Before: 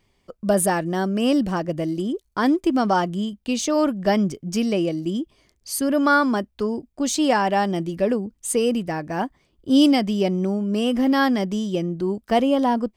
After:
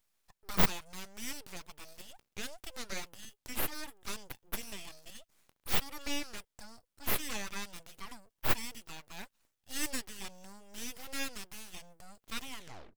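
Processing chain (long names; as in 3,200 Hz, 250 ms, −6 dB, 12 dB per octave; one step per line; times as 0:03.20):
turntable brake at the end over 0.49 s
first difference
full-wave rectification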